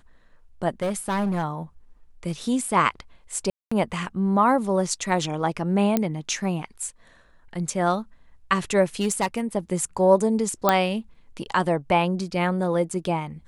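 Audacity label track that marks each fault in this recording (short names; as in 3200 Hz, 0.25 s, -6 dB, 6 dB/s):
0.820000	1.440000	clipped -21 dBFS
3.500000	3.710000	gap 0.215 s
5.970000	5.970000	pop -8 dBFS
9.010000	9.400000	clipped -17 dBFS
10.690000	10.690000	pop -4 dBFS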